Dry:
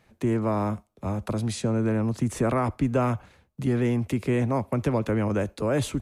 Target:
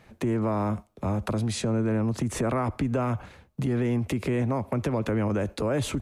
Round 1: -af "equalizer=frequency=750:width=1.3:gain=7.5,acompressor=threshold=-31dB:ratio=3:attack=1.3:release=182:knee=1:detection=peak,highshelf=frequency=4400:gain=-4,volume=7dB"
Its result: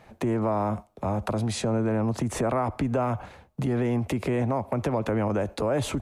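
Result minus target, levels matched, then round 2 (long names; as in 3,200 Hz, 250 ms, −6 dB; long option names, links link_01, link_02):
1,000 Hz band +3.0 dB
-af "acompressor=threshold=-31dB:ratio=3:attack=1.3:release=182:knee=1:detection=peak,highshelf=frequency=4400:gain=-4,volume=7dB"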